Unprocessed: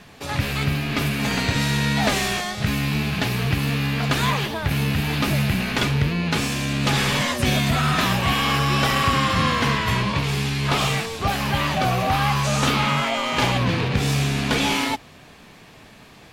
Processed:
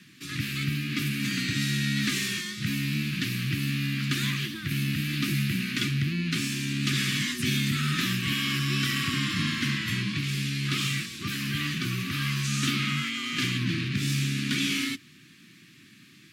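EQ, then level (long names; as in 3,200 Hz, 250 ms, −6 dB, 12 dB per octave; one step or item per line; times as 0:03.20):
high-pass filter 120 Hz 24 dB per octave
elliptic band-stop filter 340–1,200 Hz, stop band 40 dB
flat-topped bell 860 Hz −9 dB
−4.0 dB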